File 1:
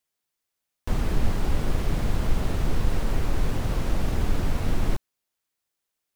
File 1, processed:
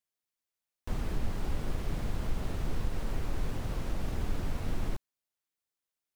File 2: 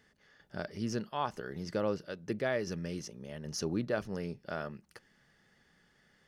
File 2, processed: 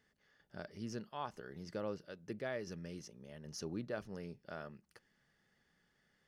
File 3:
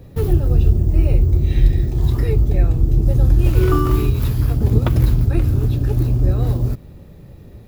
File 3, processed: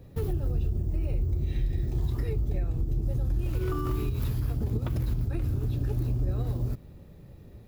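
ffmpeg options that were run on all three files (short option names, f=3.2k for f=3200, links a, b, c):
-af "alimiter=limit=-11.5dB:level=0:latency=1:release=124,volume=-8.5dB"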